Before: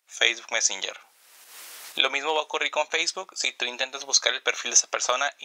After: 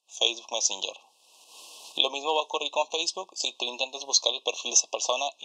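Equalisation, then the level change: band-pass 170–7500 Hz; Chebyshev band-stop 1.1–2.6 kHz, order 5; 0.0 dB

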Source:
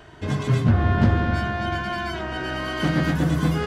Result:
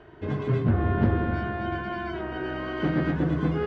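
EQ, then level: low-pass 2.5 kHz 12 dB/octave; peaking EQ 380 Hz +7.5 dB 0.77 oct; -5.5 dB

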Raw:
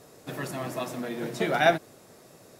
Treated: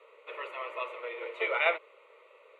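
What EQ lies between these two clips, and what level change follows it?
elliptic high-pass 470 Hz, stop band 80 dB; resonant low-pass 2.3 kHz, resonance Q 2.2; static phaser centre 1.1 kHz, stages 8; 0.0 dB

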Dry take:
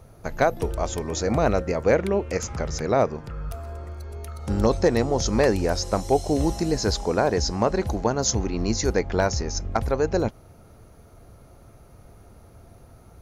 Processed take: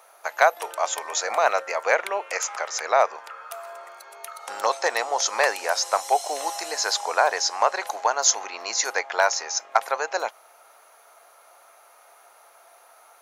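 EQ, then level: high-pass 740 Hz 24 dB/octave; peaking EQ 4.9 kHz -4 dB 0.71 oct; +7.5 dB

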